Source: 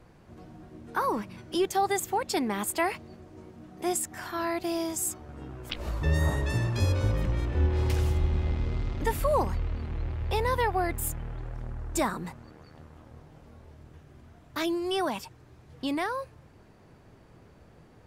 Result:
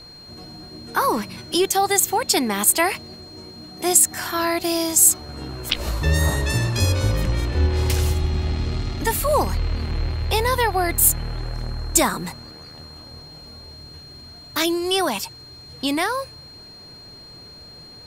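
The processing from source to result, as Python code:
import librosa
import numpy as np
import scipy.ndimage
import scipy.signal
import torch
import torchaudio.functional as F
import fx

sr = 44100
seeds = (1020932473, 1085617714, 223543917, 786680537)

p1 = fx.rider(x, sr, range_db=4, speed_s=0.5)
p2 = x + F.gain(torch.from_numpy(p1), -1.0).numpy()
p3 = fx.high_shelf(p2, sr, hz=3300.0, db=11.5)
p4 = p3 + 10.0 ** (-42.0 / 20.0) * np.sin(2.0 * np.pi * 4200.0 * np.arange(len(p3)) / sr)
p5 = fx.notch_comb(p4, sr, f0_hz=510.0, at=(8.14, 9.29))
y = F.gain(torch.from_numpy(p5), 1.0).numpy()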